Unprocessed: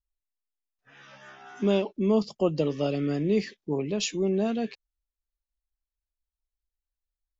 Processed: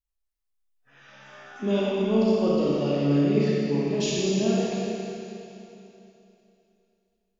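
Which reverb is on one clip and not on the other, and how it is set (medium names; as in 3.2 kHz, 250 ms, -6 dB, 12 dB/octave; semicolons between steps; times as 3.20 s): Schroeder reverb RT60 3 s, combs from 28 ms, DRR -6.5 dB; trim -4.5 dB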